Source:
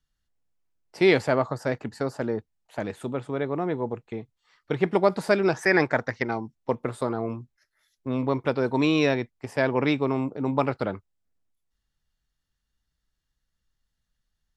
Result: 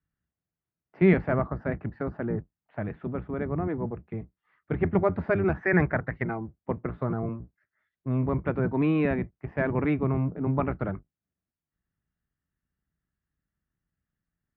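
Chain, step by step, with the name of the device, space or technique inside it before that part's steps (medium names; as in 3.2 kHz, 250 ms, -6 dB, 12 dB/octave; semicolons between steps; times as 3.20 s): 3.56–4.08 s: de-hum 47.7 Hz, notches 3; sub-octave bass pedal (octave divider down 1 oct, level 0 dB; cabinet simulation 64–2100 Hz, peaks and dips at 170 Hz +5 dB, 500 Hz -5 dB, 900 Hz -5 dB); trim -2.5 dB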